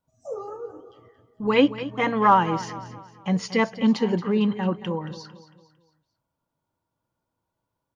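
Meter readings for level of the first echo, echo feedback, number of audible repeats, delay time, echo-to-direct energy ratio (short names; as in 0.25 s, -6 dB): -14.5 dB, 42%, 3, 0.226 s, -13.5 dB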